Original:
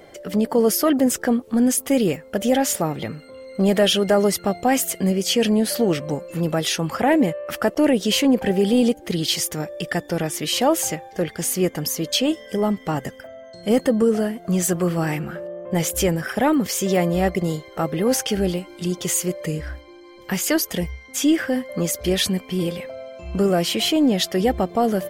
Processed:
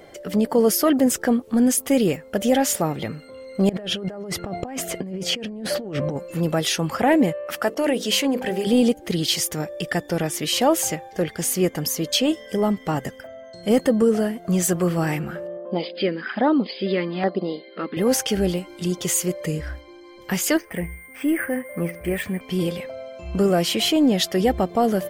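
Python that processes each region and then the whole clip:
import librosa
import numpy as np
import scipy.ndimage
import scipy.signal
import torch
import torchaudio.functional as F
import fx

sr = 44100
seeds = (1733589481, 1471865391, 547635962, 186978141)

y = fx.chain(x, sr, fx.lowpass(hz=1500.0, slope=6),
    fx.over_compress(threshold_db=-29.0, ratio=-1.0), at=(3.69, 6.17))
y = fx.chain(y, sr, fx.low_shelf(hz=260.0, db=-10.0),
    fx.hum_notches(base_hz=50, count=10), at=(7.47, 8.67))
y = fx.chain(y, sr, fx.brickwall_bandpass(low_hz=180.0, high_hz=5100.0),
    fx.filter_lfo_notch(shape='saw_down', hz=1.2, low_hz=430.0, high_hz=2800.0, q=0.97), at=(15.57, 17.97))
y = fx.chain(y, sr, fx.high_shelf_res(hz=2900.0, db=-10.5, q=3.0),
    fx.comb_fb(f0_hz=170.0, decay_s=0.49, harmonics='all', damping=0.0, mix_pct=40),
    fx.resample_bad(factor=4, down='filtered', up='hold'), at=(20.57, 22.41))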